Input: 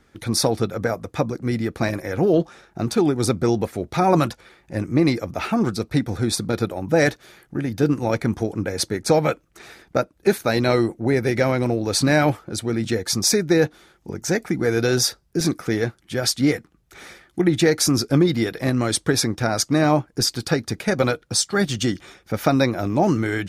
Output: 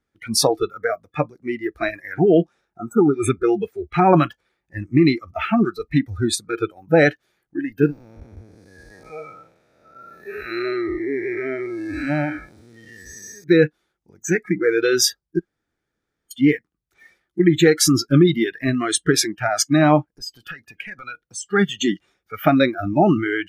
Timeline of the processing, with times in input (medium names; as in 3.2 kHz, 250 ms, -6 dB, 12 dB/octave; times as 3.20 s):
2.79–3.27 s: spectral replace 1.5–6.2 kHz
7.86–13.44 s: spectral blur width 415 ms
15.39–16.31 s: room tone
20.15–21.48 s: compression, threshold -24 dBFS
whole clip: spectral noise reduction 24 dB; trim +3.5 dB